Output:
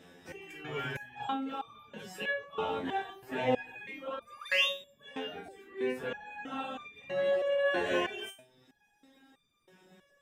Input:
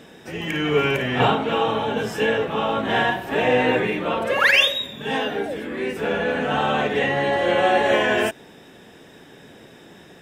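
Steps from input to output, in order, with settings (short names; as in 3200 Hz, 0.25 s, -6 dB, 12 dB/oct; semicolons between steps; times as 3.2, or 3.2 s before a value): reverb removal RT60 0.86 s; 4.69–5.48 compressor, threshold -27 dBFS, peak gain reduction 6.5 dB; stepped resonator 3.1 Hz 88–1200 Hz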